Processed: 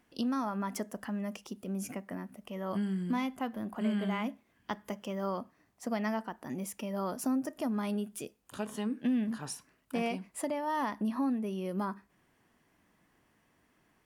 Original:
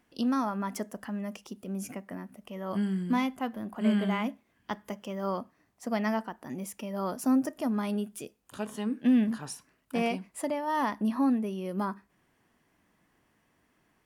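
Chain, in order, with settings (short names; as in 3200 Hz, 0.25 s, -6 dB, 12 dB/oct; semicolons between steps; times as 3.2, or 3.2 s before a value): compressor 2:1, threshold -32 dBFS, peak gain reduction 7 dB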